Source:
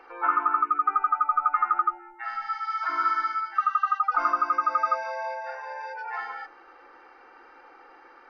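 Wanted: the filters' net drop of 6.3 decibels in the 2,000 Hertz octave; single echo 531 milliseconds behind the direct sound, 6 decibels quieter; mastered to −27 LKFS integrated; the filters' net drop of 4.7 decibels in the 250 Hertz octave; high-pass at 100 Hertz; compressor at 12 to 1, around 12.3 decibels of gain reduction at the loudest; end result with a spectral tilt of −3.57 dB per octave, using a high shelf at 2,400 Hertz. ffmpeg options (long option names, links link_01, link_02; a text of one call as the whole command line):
ffmpeg -i in.wav -af "highpass=100,equalizer=frequency=250:width_type=o:gain=-6.5,equalizer=frequency=2000:width_type=o:gain=-6.5,highshelf=frequency=2400:gain=-6,acompressor=threshold=-35dB:ratio=12,aecho=1:1:531:0.501,volume=11.5dB" out.wav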